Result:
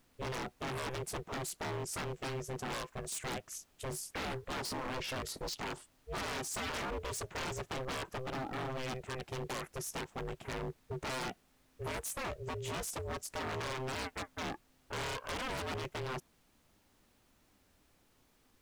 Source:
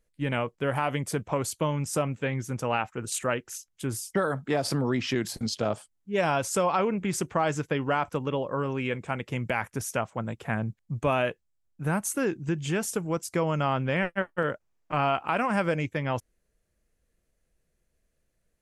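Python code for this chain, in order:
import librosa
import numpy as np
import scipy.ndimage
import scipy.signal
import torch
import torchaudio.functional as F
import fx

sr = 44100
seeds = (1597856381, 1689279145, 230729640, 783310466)

y = x * np.sin(2.0 * np.pi * 260.0 * np.arange(len(x)) / sr)
y = fx.dmg_noise_colour(y, sr, seeds[0], colour='pink', level_db=-67.0)
y = 10.0 ** (-29.5 / 20.0) * (np.abs((y / 10.0 ** (-29.5 / 20.0) + 3.0) % 4.0 - 2.0) - 1.0)
y = y * 10.0 ** (-3.0 / 20.0)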